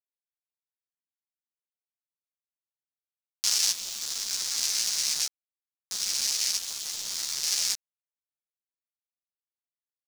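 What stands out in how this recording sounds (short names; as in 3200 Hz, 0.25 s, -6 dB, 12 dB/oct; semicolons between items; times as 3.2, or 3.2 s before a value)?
random-step tremolo 3.5 Hz, depth 75%; a quantiser's noise floor 6-bit, dither none; a shimmering, thickened sound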